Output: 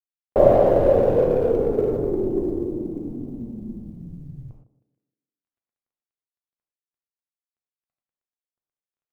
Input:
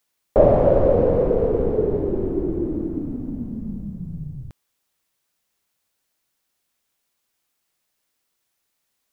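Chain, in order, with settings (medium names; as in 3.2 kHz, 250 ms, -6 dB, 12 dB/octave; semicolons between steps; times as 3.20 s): local Wiener filter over 25 samples; level-controlled noise filter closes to 2 kHz, open at -13 dBFS; bass shelf 230 Hz -7.5 dB; 2.56–4.38 s: AM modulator 120 Hz, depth 35%; companded quantiser 8-bit; treble shelf 2.2 kHz -7 dB; band-passed feedback delay 156 ms, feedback 45%, band-pass 350 Hz, level -11.5 dB; gated-style reverb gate 140 ms flat, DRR 1.5 dB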